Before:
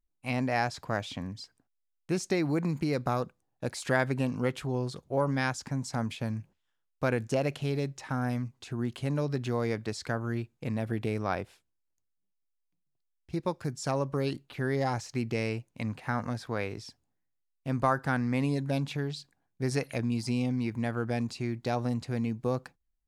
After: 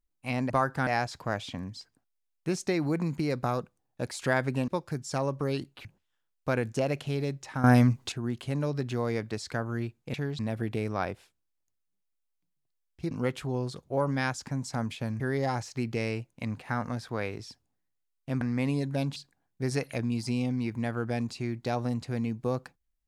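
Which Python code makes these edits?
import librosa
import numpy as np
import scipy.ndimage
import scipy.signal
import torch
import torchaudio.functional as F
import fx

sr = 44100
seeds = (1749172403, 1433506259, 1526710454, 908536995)

y = fx.edit(x, sr, fx.swap(start_s=4.31, length_s=2.09, other_s=13.41, other_length_s=1.17),
    fx.clip_gain(start_s=8.19, length_s=0.48, db=11.5),
    fx.move(start_s=17.79, length_s=0.37, to_s=0.5),
    fx.move(start_s=18.91, length_s=0.25, to_s=10.69), tone=tone)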